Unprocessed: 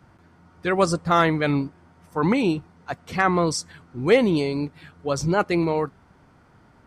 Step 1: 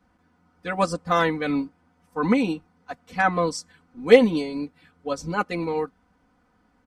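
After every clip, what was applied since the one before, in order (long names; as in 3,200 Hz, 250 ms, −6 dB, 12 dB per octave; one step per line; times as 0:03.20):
comb filter 4 ms, depth 98%
expander for the loud parts 1.5 to 1, over −30 dBFS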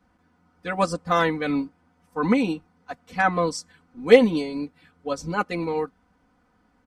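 no processing that can be heard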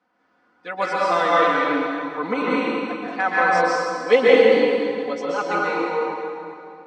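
band-pass filter 370–4,700 Hz
dense smooth reverb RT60 2.6 s, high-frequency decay 0.75×, pre-delay 115 ms, DRR −7 dB
level −1.5 dB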